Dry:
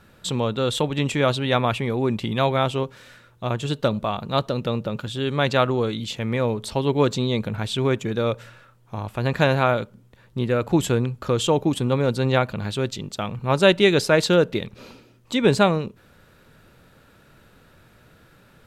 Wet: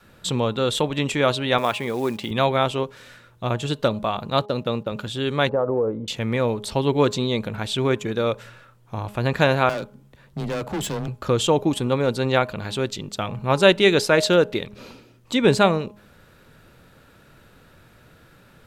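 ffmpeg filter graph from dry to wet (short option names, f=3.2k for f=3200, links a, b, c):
-filter_complex "[0:a]asettb=1/sr,asplit=3[a][b][c];[a]atrim=end=1.584[d];[b]atrim=start=1.58:end=2.31,asetpts=PTS-STARTPTS,afade=t=in:d=0.004:c=qsin,afade=t=out:st=0.726:d=0.004:c=qsin,highpass=f=260:p=1,acrusher=bits=6:mode=log:mix=0:aa=0.000001[e];[c]atrim=start=2.306[f];[d][e]acrossfade=d=0.004:c1=hsin:c2=qsin[g];[g][f]acrossfade=d=0.004:c1=qsin:c2=hsin,asettb=1/sr,asplit=3[h][i][j];[h]atrim=end=4.304[k];[i]atrim=start=4.3:end=4.92,asetpts=PTS-STARTPTS,afade=t=in:d=0.004:c=qsin,afade=t=out:st=0.616:d=0.004:c=qsin,agate=range=-22dB:threshold=-34dB:ratio=16:release=100:detection=peak,highpass=63[l];[j]atrim=start=4.916[m];[k][l]acrossfade=d=0.004:c1=hsin:c2=qsin[n];[n][m]acrossfade=d=0.004:c1=qsin:c2=hsin,asettb=1/sr,asplit=3[o][p][q];[o]atrim=end=5.494[r];[p]atrim=start=5.49:end=6.08,asetpts=PTS-STARTPTS,afade=t=in:d=0.004:c=qsin,afade=t=out:st=0.586:d=0.004:c=qsin,lowpass=f=1.1k:w=0.5412,lowpass=f=1.1k:w=1.3066,equalizer=f=500:w=3.9:g=10,acompressor=threshold=-18dB:ratio=6:attack=3.2:release=140:knee=1:detection=peak[s];[q]atrim=start=6.076[t];[r][s]acrossfade=d=0.004:c1=hsin:c2=qsin[u];[u][t]acrossfade=d=0.004:c1=qsin:c2=hsin,asettb=1/sr,asplit=3[v][w][x];[v]atrim=end=9.694[y];[w]atrim=start=9.69:end=11.08,asetpts=PTS-STARTPTS,afade=t=in:d=0.004:c=qsin,afade=t=out:st=1.386:d=0.004:c=qsin,volume=25.5dB,asoftclip=hard,volume=-25.5dB,afreqshift=16[z];[x]atrim=start=11.076[aa];[y][z]acrossfade=d=0.004:c1=hsin:c2=qsin[ab];[ab][aa]acrossfade=d=0.004:c1=qsin:c2=hsin,adynamicequalizer=threshold=0.02:dfrequency=120:dqfactor=0.71:tfrequency=120:tqfactor=0.71:attack=5:release=100:ratio=0.375:range=3:mode=cutabove:tftype=bell,bandreject=f=207.2:t=h:w=4,bandreject=f=414.4:t=h:w=4,bandreject=f=621.6:t=h:w=4,bandreject=f=828.8:t=h:w=4,bandreject=f=1.036k:t=h:w=4,volume=1.5dB"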